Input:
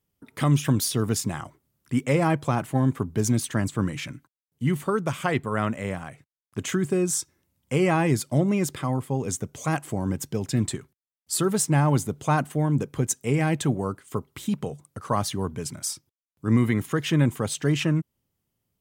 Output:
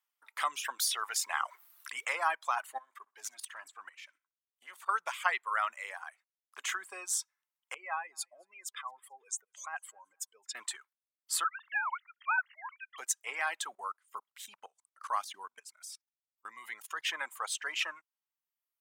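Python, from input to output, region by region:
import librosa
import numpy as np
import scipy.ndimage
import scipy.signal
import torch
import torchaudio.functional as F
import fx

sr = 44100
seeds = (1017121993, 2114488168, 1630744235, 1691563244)

y = fx.chain(x, sr, fx.highpass(hz=460.0, slope=6),
    fx.quant_float(bits=6),
    fx.env_flatten(amount_pct=50), at=(0.79, 2.13))
y = fx.chain(y, sr, fx.level_steps(step_db=15),
    fx.tube_stage(drive_db=22.0, bias=0.4),
    fx.echo_feedback(ms=62, feedback_pct=29, wet_db=-17.5), at=(2.78, 4.89))
y = fx.chain(y, sr, fx.spec_expand(power=1.7),
    fx.highpass(hz=1200.0, slope=6),
    fx.echo_feedback(ms=219, feedback_pct=33, wet_db=-22), at=(7.74, 10.55))
y = fx.chain(y, sr, fx.sine_speech(),
    fx.highpass(hz=1200.0, slope=24),
    fx.air_absorb(metres=76.0), at=(11.44, 12.98))
y = fx.chain(y, sr, fx.highpass(hz=41.0, slope=12),
    fx.bass_treble(bass_db=14, treble_db=3),
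    fx.level_steps(step_db=20), at=(13.72, 17.05))
y = fx.high_shelf(y, sr, hz=2400.0, db=-9.5)
y = fx.dereverb_blind(y, sr, rt60_s=1.2)
y = scipy.signal.sosfilt(scipy.signal.butter(4, 990.0, 'highpass', fs=sr, output='sos'), y)
y = y * 10.0 ** (3.5 / 20.0)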